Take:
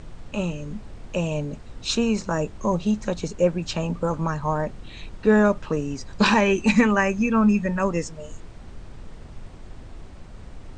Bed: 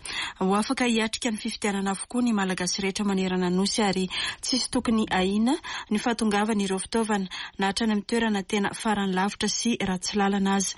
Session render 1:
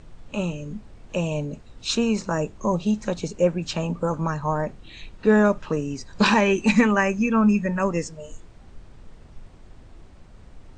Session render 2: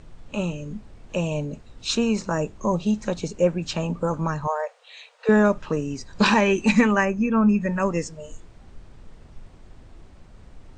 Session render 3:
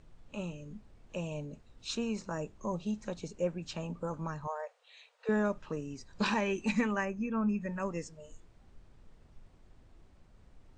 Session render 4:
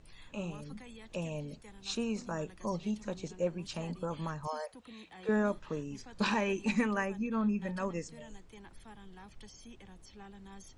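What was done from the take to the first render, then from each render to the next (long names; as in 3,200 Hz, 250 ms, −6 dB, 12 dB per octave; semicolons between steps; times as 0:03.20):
noise reduction from a noise print 6 dB
0:04.47–0:05.29: linear-phase brick-wall high-pass 440 Hz; 0:07.04–0:07.60: high-shelf EQ 2,400 Hz → 3,300 Hz −11.5 dB
level −12.5 dB
mix in bed −28 dB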